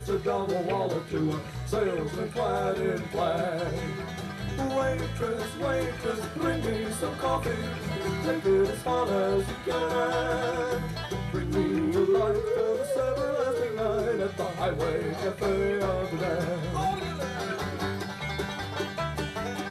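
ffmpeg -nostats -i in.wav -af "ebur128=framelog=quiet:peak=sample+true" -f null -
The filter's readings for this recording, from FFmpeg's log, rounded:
Integrated loudness:
  I:         -29.0 LUFS
  Threshold: -39.0 LUFS
Loudness range:
  LRA:         3.0 LU
  Threshold: -48.8 LUFS
  LRA low:   -30.4 LUFS
  LRA high:  -27.4 LUFS
Sample peak:
  Peak:      -15.1 dBFS
True peak:
  Peak:      -15.1 dBFS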